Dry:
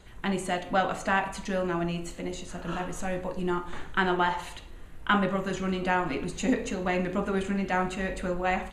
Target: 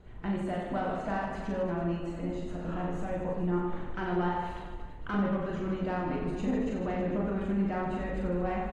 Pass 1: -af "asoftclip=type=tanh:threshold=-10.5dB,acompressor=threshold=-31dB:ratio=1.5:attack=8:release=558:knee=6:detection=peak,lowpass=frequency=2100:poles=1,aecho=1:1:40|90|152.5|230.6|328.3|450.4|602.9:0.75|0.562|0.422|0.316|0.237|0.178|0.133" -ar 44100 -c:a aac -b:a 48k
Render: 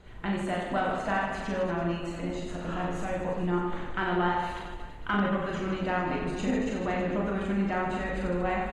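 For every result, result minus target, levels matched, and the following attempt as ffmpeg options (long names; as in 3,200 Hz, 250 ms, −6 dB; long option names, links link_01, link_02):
soft clipping: distortion −14 dB; 2,000 Hz band +5.5 dB
-af "asoftclip=type=tanh:threshold=-20.5dB,acompressor=threshold=-31dB:ratio=1.5:attack=8:release=558:knee=6:detection=peak,lowpass=frequency=2100:poles=1,aecho=1:1:40|90|152.5|230.6|328.3|450.4|602.9:0.75|0.562|0.422|0.316|0.237|0.178|0.133" -ar 44100 -c:a aac -b:a 48k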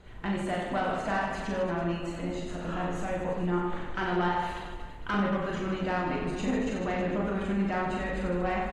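2,000 Hz band +5.0 dB
-af "asoftclip=type=tanh:threshold=-20.5dB,acompressor=threshold=-31dB:ratio=1.5:attack=8:release=558:knee=6:detection=peak,lowpass=frequency=650:poles=1,aecho=1:1:40|90|152.5|230.6|328.3|450.4|602.9:0.75|0.562|0.422|0.316|0.237|0.178|0.133" -ar 44100 -c:a aac -b:a 48k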